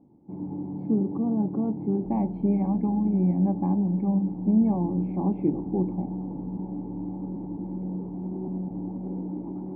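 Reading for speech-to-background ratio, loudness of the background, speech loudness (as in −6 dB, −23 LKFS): 8.0 dB, −34.0 LKFS, −26.0 LKFS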